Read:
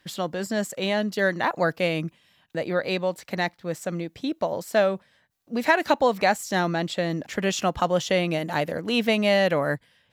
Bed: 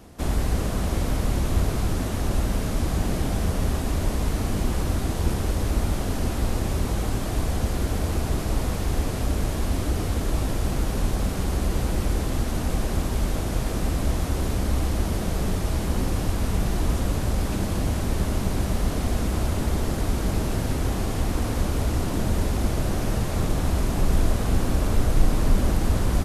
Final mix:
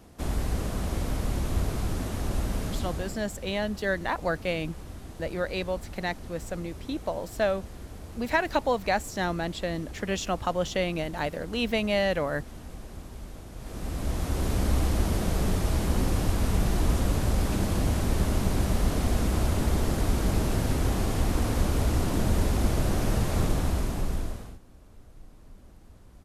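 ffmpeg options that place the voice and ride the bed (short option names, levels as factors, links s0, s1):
-filter_complex "[0:a]adelay=2650,volume=0.562[s0];[1:a]volume=3.55,afade=t=out:st=2.65:d=0.59:silence=0.251189,afade=t=in:st=13.56:d=1.06:silence=0.158489,afade=t=out:st=23.4:d=1.19:silence=0.0334965[s1];[s0][s1]amix=inputs=2:normalize=0"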